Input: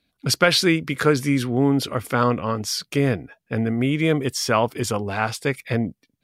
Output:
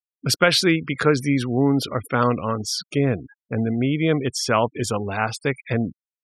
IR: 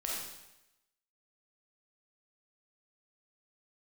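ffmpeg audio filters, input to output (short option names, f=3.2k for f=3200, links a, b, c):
-filter_complex "[0:a]asettb=1/sr,asplit=3[a][b][c];[a]atrim=end=2.904[d];[b]atrim=start=2.9:end=4.09,asetpts=PTS-STARTPTS,afade=t=in:d=0.004:c=qsin,afade=t=out:st=1.186:d=0.004:c=qsin,equalizer=f=1.8k:t=o:w=1.2:g=-3.5[e];[c]atrim=start=4.086[f];[d][e]acrossfade=d=0.004:c1=hsin:c2=qsin[g];[g][f]acrossfade=d=0.004:c1=qsin:c2=hsin,afftfilt=real='re*gte(hypot(re,im),0.0224)':imag='im*gte(hypot(re,im),0.0224)':win_size=1024:overlap=0.75"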